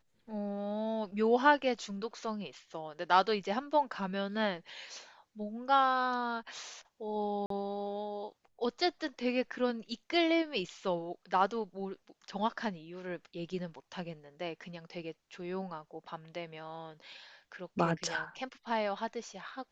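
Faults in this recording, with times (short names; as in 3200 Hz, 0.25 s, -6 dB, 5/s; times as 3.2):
7.46–7.5 gap 43 ms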